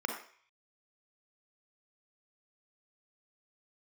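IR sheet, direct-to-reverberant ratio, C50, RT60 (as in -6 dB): 2.5 dB, 5.0 dB, 0.50 s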